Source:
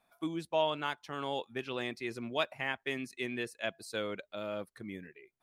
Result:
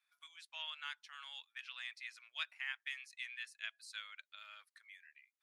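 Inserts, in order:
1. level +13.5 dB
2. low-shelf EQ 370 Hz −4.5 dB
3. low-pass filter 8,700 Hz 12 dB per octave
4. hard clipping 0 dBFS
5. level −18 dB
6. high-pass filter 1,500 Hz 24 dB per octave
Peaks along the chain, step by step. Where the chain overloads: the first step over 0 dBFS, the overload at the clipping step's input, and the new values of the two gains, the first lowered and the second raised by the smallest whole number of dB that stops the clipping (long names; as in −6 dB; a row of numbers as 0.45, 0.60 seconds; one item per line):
−3.0, −4.0, −4.0, −4.0, −22.0, −26.0 dBFS
no step passes full scale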